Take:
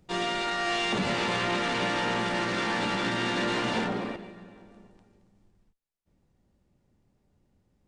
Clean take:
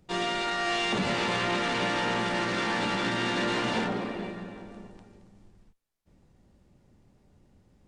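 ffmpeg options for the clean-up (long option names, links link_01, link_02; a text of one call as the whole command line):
ffmpeg -i in.wav -af "asetnsamples=nb_out_samples=441:pad=0,asendcmd='4.16 volume volume 8dB',volume=0dB" out.wav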